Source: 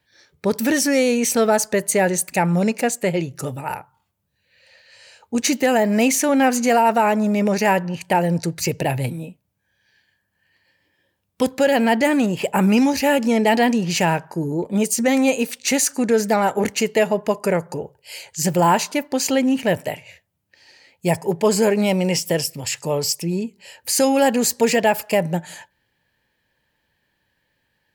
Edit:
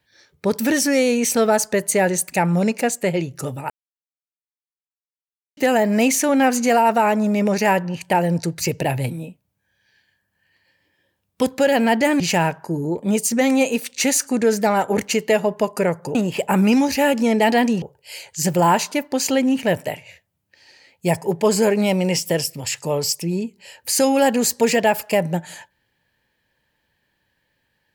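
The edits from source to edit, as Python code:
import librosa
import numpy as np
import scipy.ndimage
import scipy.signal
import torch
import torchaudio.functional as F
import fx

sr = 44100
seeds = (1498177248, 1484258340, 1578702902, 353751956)

y = fx.edit(x, sr, fx.silence(start_s=3.7, length_s=1.87),
    fx.move(start_s=12.2, length_s=1.67, to_s=17.82), tone=tone)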